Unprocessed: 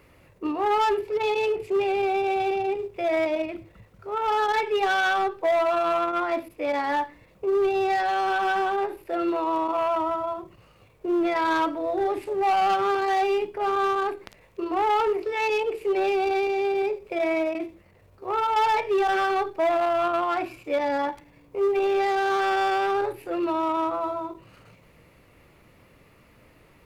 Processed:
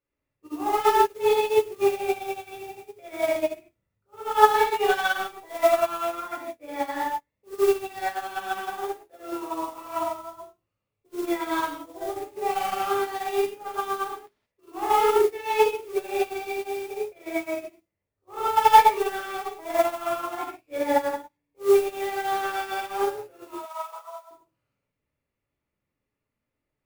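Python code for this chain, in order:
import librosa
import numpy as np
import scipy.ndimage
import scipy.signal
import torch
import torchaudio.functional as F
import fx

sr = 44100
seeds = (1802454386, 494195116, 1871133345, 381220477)

y = fx.mod_noise(x, sr, seeds[0], snr_db=18)
y = fx.cheby1_highpass(y, sr, hz=530.0, order=6, at=(23.47, 24.31))
y = fx.rev_gated(y, sr, seeds[1], gate_ms=200, shape='flat', drr_db=-7.0)
y = fx.upward_expand(y, sr, threshold_db=-33.0, expansion=2.5)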